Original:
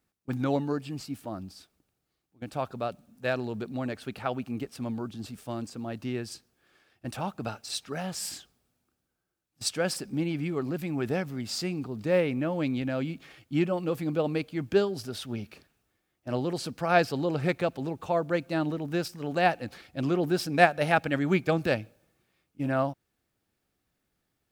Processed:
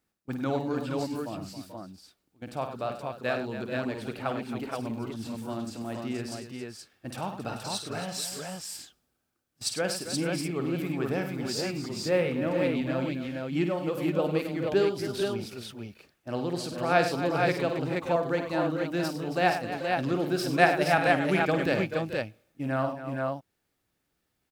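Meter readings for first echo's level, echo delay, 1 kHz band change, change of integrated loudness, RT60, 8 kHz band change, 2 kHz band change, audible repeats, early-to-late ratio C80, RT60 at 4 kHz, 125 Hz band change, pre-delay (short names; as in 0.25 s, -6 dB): -8.5 dB, 52 ms, +1.5 dB, +0.5 dB, none, +1.5 dB, +1.5 dB, 5, none, none, -0.5 dB, none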